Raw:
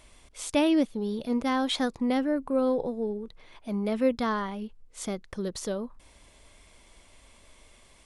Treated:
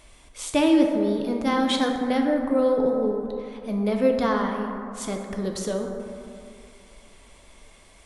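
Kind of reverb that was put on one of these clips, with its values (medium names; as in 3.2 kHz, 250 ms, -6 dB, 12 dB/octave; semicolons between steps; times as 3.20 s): plate-style reverb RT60 2.6 s, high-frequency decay 0.35×, DRR 2 dB; trim +2.5 dB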